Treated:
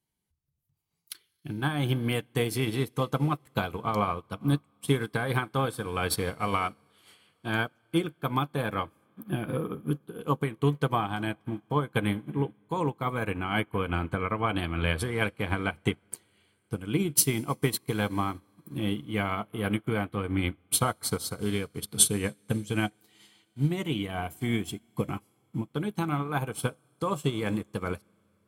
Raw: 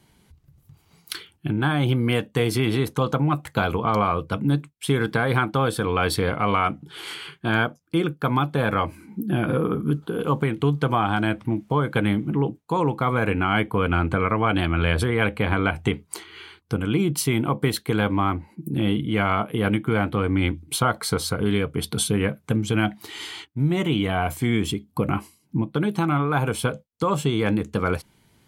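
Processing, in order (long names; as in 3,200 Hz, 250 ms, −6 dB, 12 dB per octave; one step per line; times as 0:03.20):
high-shelf EQ 7,200 Hz +11.5 dB
notch filter 1,400 Hz, Q 17
convolution reverb RT60 4.8 s, pre-delay 30 ms, DRR 15 dB
expander for the loud parts 2.5 to 1, over −34 dBFS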